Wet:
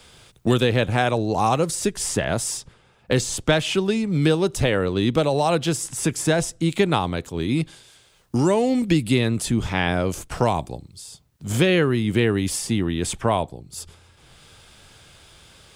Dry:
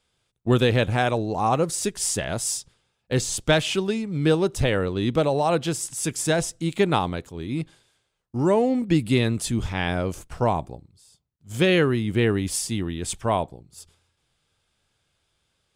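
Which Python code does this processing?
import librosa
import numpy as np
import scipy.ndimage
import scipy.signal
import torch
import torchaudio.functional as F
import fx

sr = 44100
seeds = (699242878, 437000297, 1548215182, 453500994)

y = fx.band_squash(x, sr, depth_pct=70)
y = y * 10.0 ** (1.5 / 20.0)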